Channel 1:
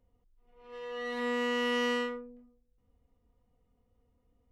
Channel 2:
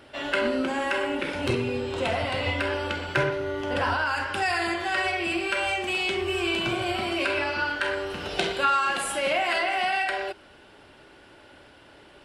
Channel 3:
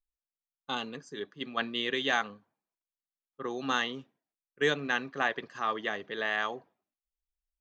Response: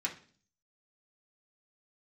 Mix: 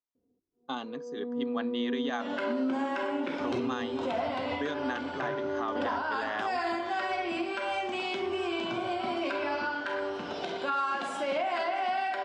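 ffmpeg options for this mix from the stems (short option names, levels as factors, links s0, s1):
-filter_complex "[0:a]lowpass=f=380:t=q:w=3.7,adelay=150,volume=0.596[s0];[1:a]adelay=2050,volume=0.631[s1];[2:a]volume=0.841[s2];[s0][s1][s2]amix=inputs=3:normalize=0,highpass=160,equalizer=f=260:t=q:w=4:g=9,equalizer=f=680:t=q:w=4:g=5,equalizer=f=980:t=q:w=4:g=5,equalizer=f=1900:t=q:w=4:g=-4,equalizer=f=2700:t=q:w=4:g=-6,equalizer=f=4400:t=q:w=4:g=-4,lowpass=f=6300:w=0.5412,lowpass=f=6300:w=1.3066,alimiter=limit=0.0794:level=0:latency=1:release=199"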